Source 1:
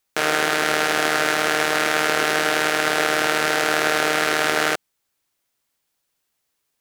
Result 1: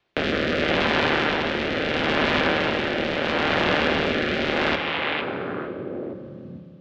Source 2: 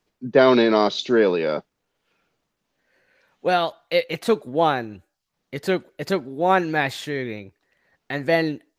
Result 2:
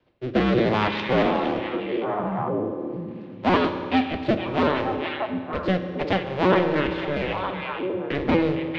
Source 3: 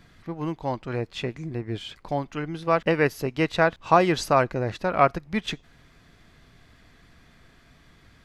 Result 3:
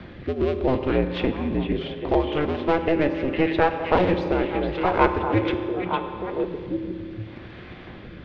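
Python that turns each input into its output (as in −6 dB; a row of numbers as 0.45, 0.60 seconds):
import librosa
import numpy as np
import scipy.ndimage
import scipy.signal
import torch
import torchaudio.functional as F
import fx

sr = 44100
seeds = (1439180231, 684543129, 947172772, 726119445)

p1 = fx.cycle_switch(x, sr, every=2, mode='inverted')
p2 = scipy.signal.sosfilt(scipy.signal.butter(4, 3300.0, 'lowpass', fs=sr, output='sos'), p1)
p3 = fx.low_shelf(p2, sr, hz=60.0, db=-7.0)
p4 = p3 + fx.echo_stepped(p3, sr, ms=458, hz=2600.0, octaves=-1.4, feedback_pct=70, wet_db=-4, dry=0)
p5 = fx.rotary(p4, sr, hz=0.75)
p6 = fx.rider(p5, sr, range_db=4, speed_s=2.0)
p7 = fx.peak_eq(p6, sr, hz=1600.0, db=-5.5, octaves=2.2)
p8 = fx.rev_fdn(p7, sr, rt60_s=1.8, lf_ratio=1.0, hf_ratio=0.7, size_ms=17.0, drr_db=7.0)
p9 = fx.band_squash(p8, sr, depth_pct=40)
y = p9 * 10.0 ** (-24 / 20.0) / np.sqrt(np.mean(np.square(p9)))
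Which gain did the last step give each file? +2.5, +1.5, +5.5 decibels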